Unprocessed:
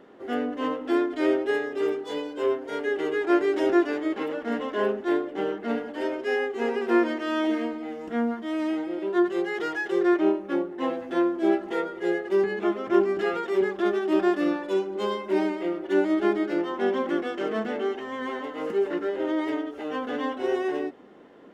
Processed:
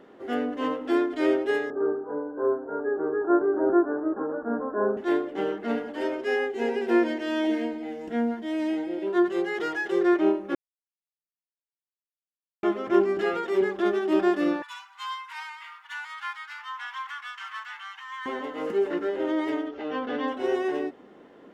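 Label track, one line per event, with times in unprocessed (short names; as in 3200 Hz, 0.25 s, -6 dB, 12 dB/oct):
1.700000	4.970000	steep low-pass 1600 Hz 96 dB/oct
6.500000	9.070000	bell 1200 Hz -14 dB 0.26 oct
10.550000	12.630000	mute
14.620000	18.260000	steep high-pass 930 Hz 72 dB/oct
19.680000	20.280000	LPF 5300 Hz 24 dB/oct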